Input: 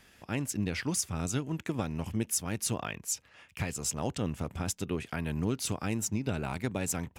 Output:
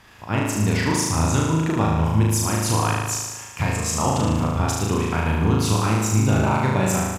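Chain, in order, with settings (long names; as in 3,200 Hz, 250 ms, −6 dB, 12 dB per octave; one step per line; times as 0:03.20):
graphic EQ with 15 bands 100 Hz +6 dB, 1,000 Hz +10 dB, 10,000 Hz −6 dB
downsampling to 32,000 Hz
flutter between parallel walls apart 6.4 metres, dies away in 1.3 s
level +6 dB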